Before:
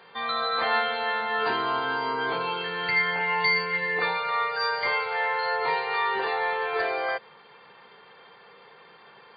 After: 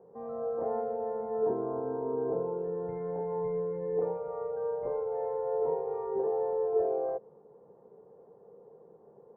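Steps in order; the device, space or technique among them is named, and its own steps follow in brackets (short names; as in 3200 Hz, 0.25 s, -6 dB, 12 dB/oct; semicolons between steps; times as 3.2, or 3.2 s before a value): under water (LPF 610 Hz 24 dB/oct; bell 440 Hz +4.5 dB 0.39 oct)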